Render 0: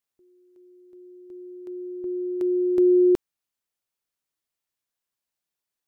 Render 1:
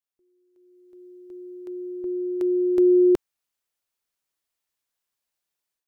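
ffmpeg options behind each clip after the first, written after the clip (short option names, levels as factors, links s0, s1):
-af "equalizer=f=160:w=0.65:g=-4.5,dynaudnorm=f=520:g=3:m=3.35,volume=0.422"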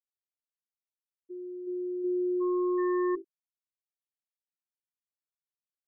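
-af "bandreject=f=55.62:t=h:w=4,bandreject=f=111.24:t=h:w=4,bandreject=f=166.86:t=h:w=4,bandreject=f=222.48:t=h:w=4,bandreject=f=278.1:t=h:w=4,bandreject=f=333.72:t=h:w=4,bandreject=f=389.34:t=h:w=4,bandreject=f=444.96:t=h:w=4,bandreject=f=500.58:t=h:w=4,bandreject=f=556.2:t=h:w=4,bandreject=f=611.82:t=h:w=4,bandreject=f=667.44:t=h:w=4,bandreject=f=723.06:t=h:w=4,bandreject=f=778.68:t=h:w=4,bandreject=f=834.3:t=h:w=4,bandreject=f=889.92:t=h:w=4,bandreject=f=945.54:t=h:w=4,bandreject=f=1001.16:t=h:w=4,bandreject=f=1056.78:t=h:w=4,bandreject=f=1112.4:t=h:w=4,bandreject=f=1168.02:t=h:w=4,bandreject=f=1223.64:t=h:w=4,bandreject=f=1279.26:t=h:w=4,bandreject=f=1334.88:t=h:w=4,bandreject=f=1390.5:t=h:w=4,bandreject=f=1446.12:t=h:w=4,bandreject=f=1501.74:t=h:w=4,bandreject=f=1557.36:t=h:w=4,bandreject=f=1612.98:t=h:w=4,bandreject=f=1668.6:t=h:w=4,bandreject=f=1724.22:t=h:w=4,bandreject=f=1779.84:t=h:w=4,bandreject=f=1835.46:t=h:w=4,bandreject=f=1891.08:t=h:w=4,bandreject=f=1946.7:t=h:w=4,volume=21.1,asoftclip=hard,volume=0.0473,afftfilt=real='re*gte(hypot(re,im),0.0708)':imag='im*gte(hypot(re,im),0.0708)':win_size=1024:overlap=0.75"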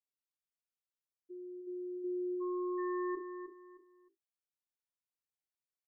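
-af "aecho=1:1:310|620|930:0.355|0.0958|0.0259,volume=0.473"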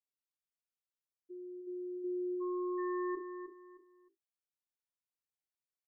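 -af anull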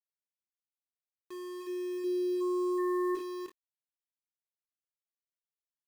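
-filter_complex "[0:a]aeval=exprs='val(0)*gte(abs(val(0)),0.00447)':c=same,asplit=2[s0][s1];[s1]adelay=22,volume=0.282[s2];[s0][s2]amix=inputs=2:normalize=0,volume=1.58"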